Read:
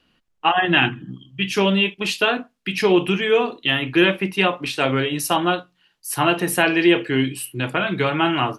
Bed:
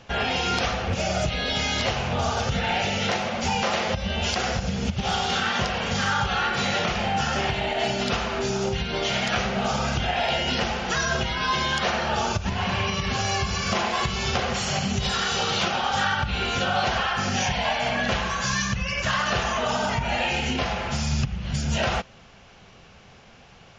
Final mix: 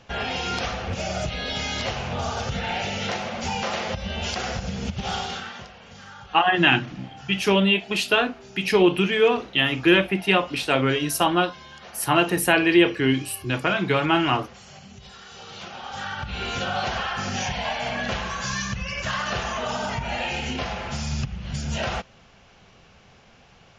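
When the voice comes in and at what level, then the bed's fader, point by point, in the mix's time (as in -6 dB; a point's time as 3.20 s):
5.90 s, -1.0 dB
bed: 5.19 s -3 dB
5.75 s -19.5 dB
15.24 s -19.5 dB
16.48 s -3 dB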